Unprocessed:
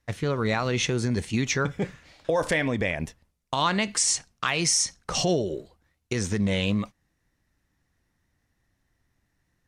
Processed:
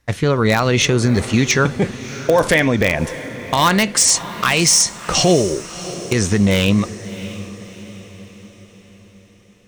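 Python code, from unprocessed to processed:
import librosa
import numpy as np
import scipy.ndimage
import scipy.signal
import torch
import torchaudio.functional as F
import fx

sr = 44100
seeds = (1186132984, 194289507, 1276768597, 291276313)

p1 = (np.mod(10.0 ** (14.5 / 20.0) * x + 1.0, 2.0) - 1.0) / 10.0 ** (14.5 / 20.0)
p2 = x + (p1 * librosa.db_to_amplitude(-7.0))
p3 = fx.echo_diffused(p2, sr, ms=650, feedback_pct=48, wet_db=-14.5)
y = p3 * librosa.db_to_amplitude(7.0)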